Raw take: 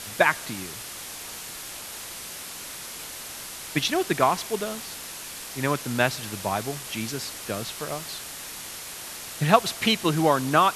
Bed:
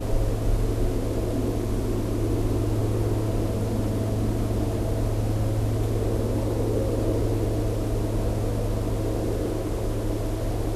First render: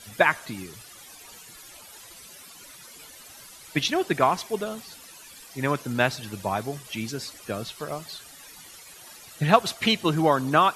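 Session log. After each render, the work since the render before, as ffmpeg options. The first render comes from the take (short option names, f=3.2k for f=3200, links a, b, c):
-af "afftdn=nr=14:nf=-38"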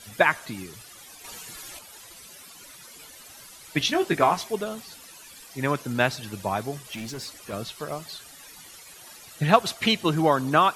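-filter_complex "[0:a]asettb=1/sr,asplit=3[a][b][c];[a]atrim=end=1.244[d];[b]atrim=start=1.24:end=1.79,asetpts=PTS-STARTPTS,afade=t=in:d=0.004:c=qsin,afade=t=out:st=0.546:d=0.004:c=qsin,acontrast=33[e];[c]atrim=start=1.786[f];[d][e]acrossfade=d=0.004:c1=hsin:c2=qsin[g];[g][f]acrossfade=d=0.004:c1=qsin:c2=hsin,asettb=1/sr,asplit=3[h][i][j];[h]atrim=end=3.794[k];[i]atrim=start=3.79:end=4.52,asetpts=PTS-STARTPTS,afade=t=in:d=0.004:c=qsin,afade=t=out:st=0.726:d=0.004:c=qsin,asplit=2[l][m];[m]adelay=18,volume=-5.5dB[n];[l][n]amix=inputs=2:normalize=0,atrim=end_sample=32193[o];[j]atrim=start=4.516[p];[k][o]acrossfade=d=0.004:c1=hsin:c2=qsin[q];[q][p]acrossfade=d=0.004:c1=qsin:c2=hsin,asettb=1/sr,asplit=3[r][s][t];[r]atrim=end=6.794[u];[s]atrim=start=6.79:end=7.53,asetpts=PTS-STARTPTS,afade=t=in:d=0.004:c=qsin,afade=t=out:st=0.736:d=0.004:c=qsin,asoftclip=type=hard:threshold=-31dB[v];[t]atrim=start=7.526[w];[u][v]acrossfade=d=0.004:c1=hsin:c2=qsin[x];[x][w]acrossfade=d=0.004:c1=qsin:c2=hsin"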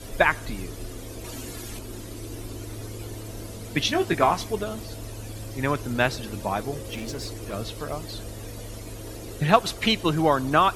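-filter_complex "[1:a]volume=-12.5dB[a];[0:a][a]amix=inputs=2:normalize=0"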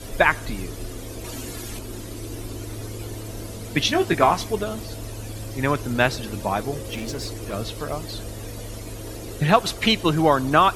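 -af "volume=3dB,alimiter=limit=-2dB:level=0:latency=1"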